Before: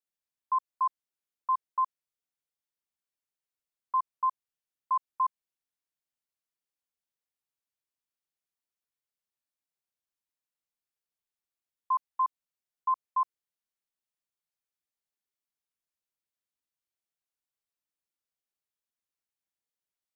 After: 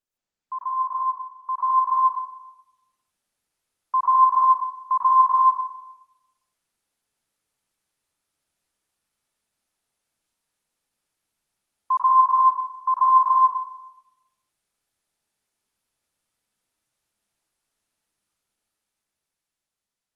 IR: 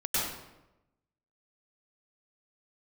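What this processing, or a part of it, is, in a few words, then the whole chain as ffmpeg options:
speakerphone in a meeting room: -filter_complex "[1:a]atrim=start_sample=2205[a];[0:a][a]afir=irnorm=-1:irlink=0,dynaudnorm=f=720:g=5:m=10.5dB,volume=-2.5dB" -ar 48000 -c:a libopus -b:a 24k

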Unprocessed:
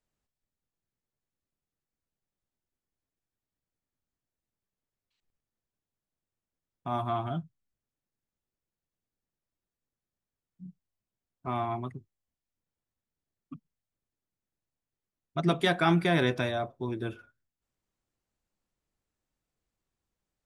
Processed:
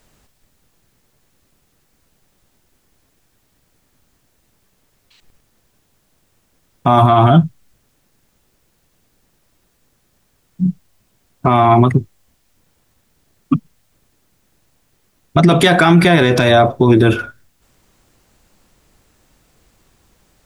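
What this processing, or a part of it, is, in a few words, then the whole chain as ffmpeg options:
loud club master: -af "acompressor=threshold=-27dB:ratio=3,asoftclip=type=hard:threshold=-19.5dB,alimiter=level_in=31dB:limit=-1dB:release=50:level=0:latency=1,volume=-1dB"

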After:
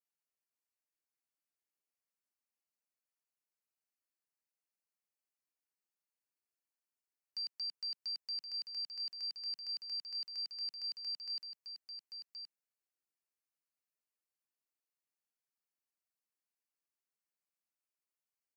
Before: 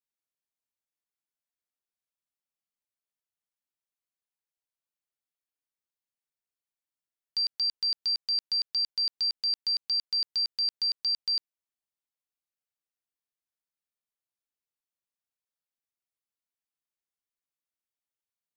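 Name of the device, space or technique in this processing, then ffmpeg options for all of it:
PA system with an anti-feedback notch: -af "highpass=f=180:w=0.5412,highpass=f=180:w=1.3066,asuperstop=centerf=3500:order=8:qfactor=3.3,alimiter=level_in=8dB:limit=-24dB:level=0:latency=1:release=10,volume=-8dB,aecho=1:1:1072:0.398,volume=-3.5dB"

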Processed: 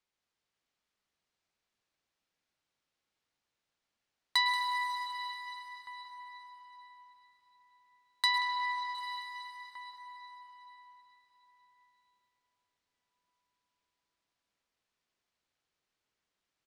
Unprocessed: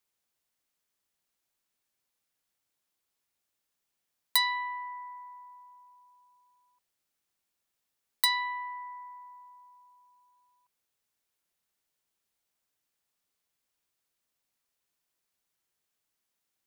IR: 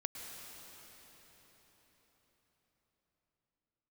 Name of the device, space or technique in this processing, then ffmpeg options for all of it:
cave: -filter_complex "[0:a]lowpass=5.1k,aecho=1:1:181:0.251[a];[1:a]atrim=start_sample=2205[b];[a][b]afir=irnorm=-1:irlink=0,asettb=1/sr,asplit=3[c][d][e];[c]atrim=end=8.384[f];[d]atrim=start=8.38:end=8.95,asetpts=PTS-STARTPTS,afade=t=in:d=0.004:c=qsin,afade=t=out:st=0.566:d=0.004:c=qsin,lowpass=4.8k[g];[e]atrim=start=8.946[h];[f][g]acrossfade=d=0.004:c1=hsin:c2=qsin[i];[i][h]acrossfade=d=0.004:c1=qsin:c2=hsin,asplit=2[j][k];[k]adelay=1516,volume=-13dB,highshelf=f=4k:g=-34.1[l];[j][l]amix=inputs=2:normalize=0,volume=1.5dB"

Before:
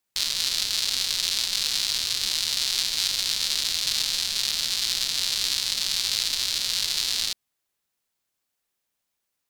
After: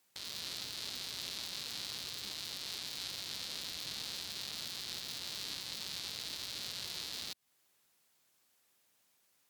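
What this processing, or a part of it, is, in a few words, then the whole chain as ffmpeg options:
podcast mastering chain: -af "highpass=94,deesser=0.6,acompressor=threshold=-41dB:ratio=3,alimiter=level_in=8dB:limit=-24dB:level=0:latency=1:release=296,volume=-8dB,volume=7.5dB" -ar 44100 -c:a libmp3lame -b:a 112k

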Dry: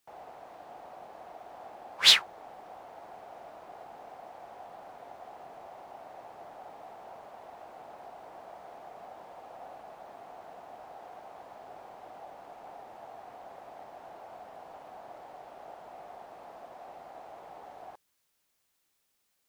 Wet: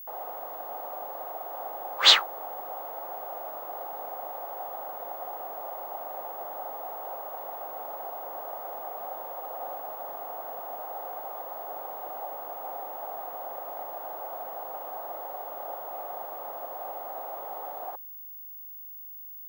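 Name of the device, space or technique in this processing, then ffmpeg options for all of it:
old television with a line whistle: -af "highpass=f=210:w=0.5412,highpass=f=210:w=1.3066,equalizer=f=230:t=q:w=4:g=-5,equalizer=f=530:t=q:w=4:g=8,equalizer=f=810:t=q:w=4:g=6,equalizer=f=1.2k:t=q:w=4:g=8,equalizer=f=2.4k:t=q:w=4:g=-5,equalizer=f=5.3k:t=q:w=4:g=-6,lowpass=f=6.9k:w=0.5412,lowpass=f=6.9k:w=1.3066,aeval=exprs='val(0)+0.00631*sin(2*PI*15625*n/s)':c=same,volume=3.5dB"

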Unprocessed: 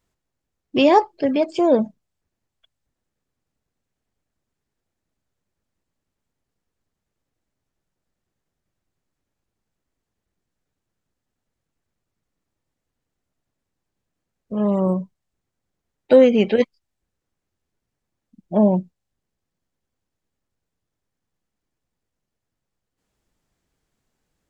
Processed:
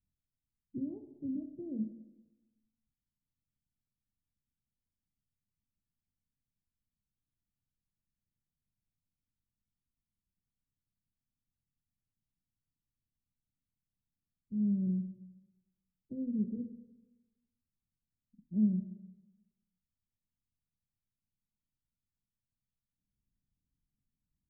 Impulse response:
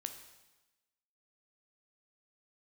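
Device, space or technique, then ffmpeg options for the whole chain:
club heard from the street: -filter_complex "[0:a]alimiter=limit=-9.5dB:level=0:latency=1:release=249,lowpass=f=230:w=0.5412,lowpass=f=230:w=1.3066[a];[1:a]atrim=start_sample=2205[b];[a][b]afir=irnorm=-1:irlink=0,volume=-6.5dB"

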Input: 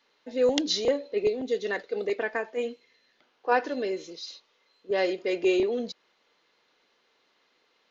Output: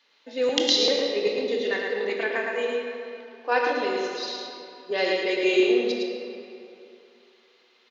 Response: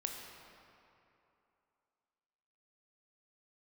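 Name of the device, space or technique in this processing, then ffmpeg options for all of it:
PA in a hall: -filter_complex "[0:a]asettb=1/sr,asplit=3[a][b][c];[a]atrim=end=1.334[d];[b]atrim=start=1.33:end=2.32,asetpts=PTS-STARTPTS,afade=t=in:d=0.004:c=qsin,afade=t=out:st=0.986:d=0.004:c=qsin,acrossover=split=5100[e][f];[f]acompressor=threshold=-58dB:ratio=4:attack=1:release=60[g];[e][g]amix=inputs=2:normalize=0[h];[c]atrim=start=2.316[i];[d][h]acrossfade=d=0.004:c1=hsin:c2=qsin[j];[j][i]acrossfade=d=0.004:c1=qsin:c2=hsin,highpass=180,equalizer=f=3.4k:t=o:w=1.9:g=8,aecho=1:1:110:0.631[k];[1:a]atrim=start_sample=2205[l];[k][l]afir=irnorm=-1:irlink=0"

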